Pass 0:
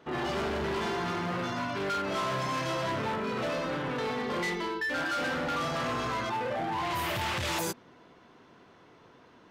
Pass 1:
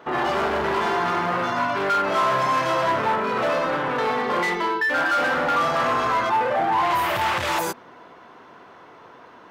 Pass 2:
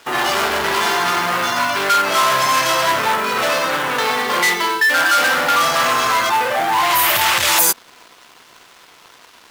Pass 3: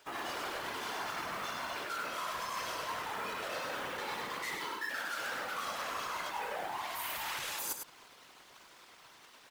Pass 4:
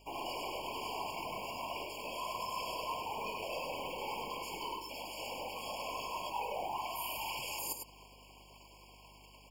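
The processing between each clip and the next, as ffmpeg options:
ffmpeg -i in.wav -filter_complex "[0:a]highshelf=frequency=10000:gain=8.5,asplit=2[link_01][link_02];[link_02]alimiter=level_in=5.5dB:limit=-24dB:level=0:latency=1,volume=-5.5dB,volume=2dB[link_03];[link_01][link_03]amix=inputs=2:normalize=0,equalizer=frequency=1000:width=0.42:gain=12.5,volume=-6dB" out.wav
ffmpeg -i in.wav -af "aeval=exprs='sgn(val(0))*max(abs(val(0))-0.00376,0)':channel_layout=same,crystalizer=i=9:c=0" out.wav
ffmpeg -i in.wav -af "areverse,acompressor=threshold=-23dB:ratio=20,areverse,afftfilt=real='hypot(re,im)*cos(2*PI*random(0))':imag='hypot(re,im)*sin(2*PI*random(1))':win_size=512:overlap=0.75,aecho=1:1:102:0.473,volume=-6.5dB" out.wav
ffmpeg -i in.wav -filter_complex "[0:a]acrossover=split=410|1700|5400[link_01][link_02][link_03][link_04];[link_01]aeval=exprs='clip(val(0),-1,0.00126)':channel_layout=same[link_05];[link_05][link_02][link_03][link_04]amix=inputs=4:normalize=0,aeval=exprs='val(0)+0.000708*(sin(2*PI*50*n/s)+sin(2*PI*2*50*n/s)/2+sin(2*PI*3*50*n/s)/3+sin(2*PI*4*50*n/s)/4+sin(2*PI*5*50*n/s)/5)':channel_layout=same,afftfilt=real='re*eq(mod(floor(b*sr/1024/1100),2),0)':imag='im*eq(mod(floor(b*sr/1024/1100),2),0)':win_size=1024:overlap=0.75,volume=1.5dB" out.wav

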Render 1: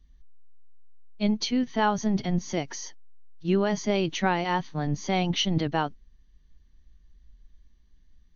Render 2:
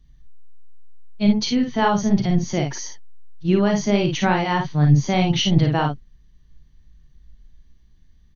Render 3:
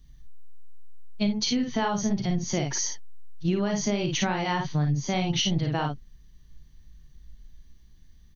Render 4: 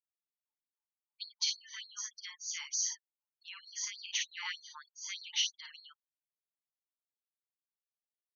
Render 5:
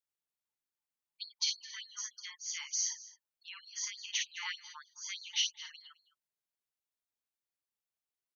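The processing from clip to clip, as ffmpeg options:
ffmpeg -i in.wav -filter_complex "[0:a]equalizer=frequency=130:width_type=o:width=0.68:gain=10.5,asplit=2[link_01][link_02];[link_02]aecho=0:1:40|54:0.355|0.562[link_03];[link_01][link_03]amix=inputs=2:normalize=0,volume=3.5dB" out.wav
ffmpeg -i in.wav -af "highshelf=frequency=6000:gain=11,acompressor=threshold=-22dB:ratio=8" out.wav
ffmpeg -i in.wav -af "afftfilt=real='re*gte(hypot(re,im),0.00631)':imag='im*gte(hypot(re,im),0.00631)':win_size=1024:overlap=0.75,afftfilt=real='re*gte(b*sr/1024,830*pow(4200/830,0.5+0.5*sin(2*PI*3.3*pts/sr)))':imag='im*gte(b*sr/1024,830*pow(4200/830,0.5+0.5*sin(2*PI*3.3*pts/sr)))':win_size=1024:overlap=0.75,volume=-4dB" out.wav
ffmpeg -i in.wav -af "aecho=1:1:212:0.119" out.wav

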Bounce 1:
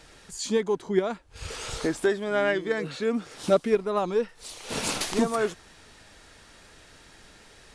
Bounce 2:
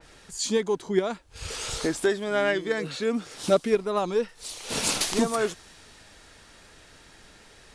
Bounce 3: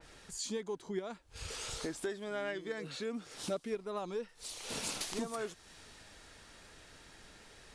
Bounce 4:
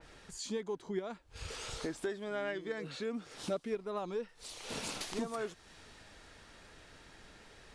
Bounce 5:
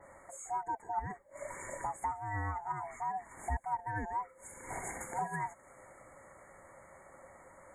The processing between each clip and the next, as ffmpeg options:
ffmpeg -i in.wav -af "adynamicequalizer=threshold=0.00501:dfrequency=2900:dqfactor=0.7:tfrequency=2900:tqfactor=0.7:attack=5:release=100:ratio=0.375:range=2.5:mode=boostabove:tftype=highshelf" out.wav
ffmpeg -i in.wav -af "acompressor=threshold=-38dB:ratio=2,volume=-4.5dB" out.wav
ffmpeg -i in.wav -af "highshelf=frequency=5500:gain=-8,volume=1dB" out.wav
ffmpeg -i in.wav -af "afftfilt=real='real(if(lt(b,1008),b+24*(1-2*mod(floor(b/24),2)),b),0)':imag='imag(if(lt(b,1008),b+24*(1-2*mod(floor(b/24),2)),b),0)':win_size=2048:overlap=0.75,afftfilt=real='re*(1-between(b*sr/4096,2300,6500))':imag='im*(1-between(b*sr/4096,2300,6500))':win_size=4096:overlap=0.75,volume=1dB" out.wav

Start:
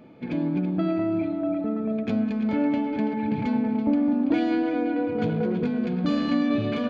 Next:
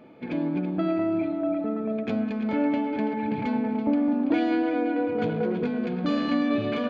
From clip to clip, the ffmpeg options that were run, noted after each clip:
ffmpeg -i in.wav -af "bass=frequency=250:gain=-7,treble=frequency=4000:gain=-5,volume=1.5dB" out.wav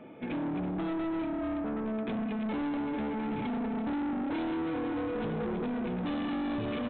ffmpeg -i in.wav -filter_complex "[0:a]acrossover=split=460|3000[link_01][link_02][link_03];[link_02]acompressor=threshold=-35dB:ratio=6[link_04];[link_01][link_04][link_03]amix=inputs=3:normalize=0,aresample=8000,asoftclip=type=tanh:threshold=-32dB,aresample=44100,volume=1.5dB" out.wav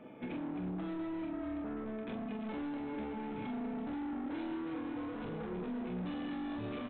ffmpeg -i in.wav -af "aecho=1:1:28|44:0.473|0.596,alimiter=level_in=5.5dB:limit=-24dB:level=0:latency=1:release=167,volume=-5.5dB,volume=-4.5dB" out.wav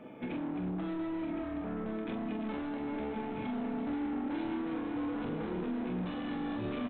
ffmpeg -i in.wav -af "aecho=1:1:1064:0.398,volume=3dB" out.wav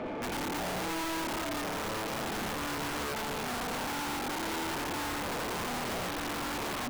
ffmpeg -i in.wav -filter_complex "[0:a]asplit=2[link_01][link_02];[link_02]highpass=frequency=720:poles=1,volume=35dB,asoftclip=type=tanh:threshold=-28dB[link_03];[link_01][link_03]amix=inputs=2:normalize=0,lowpass=frequency=1000:poles=1,volume=-6dB,aeval=exprs='(mod(35.5*val(0)+1,2)-1)/35.5':channel_layout=same" out.wav

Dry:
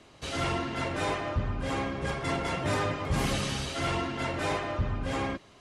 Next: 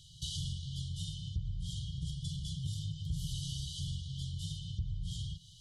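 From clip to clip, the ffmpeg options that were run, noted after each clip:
ffmpeg -i in.wav -af "afftfilt=real='re*(1-between(b*sr/4096,180,2900))':imag='im*(1-between(b*sr/4096,180,2900))':win_size=4096:overlap=0.75,acompressor=threshold=-42dB:ratio=3,adynamicequalizer=threshold=0.00112:dfrequency=2100:dqfactor=0.7:tfrequency=2100:tqfactor=0.7:attack=5:release=100:ratio=0.375:range=2:mode=cutabove:tftype=highshelf,volume=5dB" out.wav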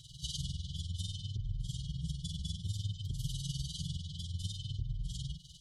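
ffmpeg -i in.wav -filter_complex "[0:a]asplit=2[link_01][link_02];[link_02]acompressor=threshold=-45dB:ratio=6,volume=1dB[link_03];[link_01][link_03]amix=inputs=2:normalize=0,tremolo=f=20:d=0.8,asplit=2[link_04][link_05];[link_05]adelay=4.8,afreqshift=0.6[link_06];[link_04][link_06]amix=inputs=2:normalize=1,volume=3.5dB" out.wav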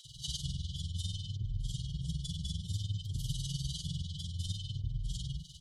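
ffmpeg -i in.wav -filter_complex "[0:a]asplit=2[link_01][link_02];[link_02]asoftclip=type=tanh:threshold=-37.5dB,volume=-11dB[link_03];[link_01][link_03]amix=inputs=2:normalize=0,acrossover=split=420[link_04][link_05];[link_04]adelay=50[link_06];[link_06][link_05]amix=inputs=2:normalize=0" out.wav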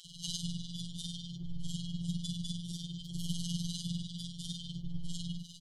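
ffmpeg -i in.wav -filter_complex "[0:a]afftfilt=real='hypot(re,im)*cos(PI*b)':imag='0':win_size=1024:overlap=0.75,asplit=2[link_01][link_02];[link_02]adelay=22,volume=-14dB[link_03];[link_01][link_03]amix=inputs=2:normalize=0,volume=4dB" out.wav

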